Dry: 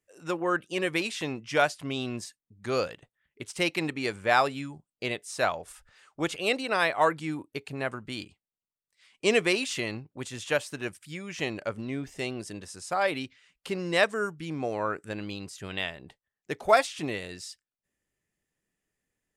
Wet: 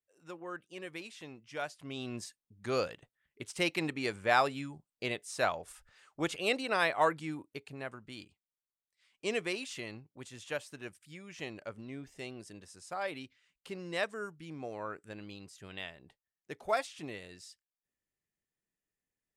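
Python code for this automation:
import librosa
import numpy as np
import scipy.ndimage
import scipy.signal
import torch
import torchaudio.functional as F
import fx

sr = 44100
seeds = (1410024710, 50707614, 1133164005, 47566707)

y = fx.gain(x, sr, db=fx.line((1.56, -15.5), (2.25, -4.0), (6.99, -4.0), (7.92, -10.5)))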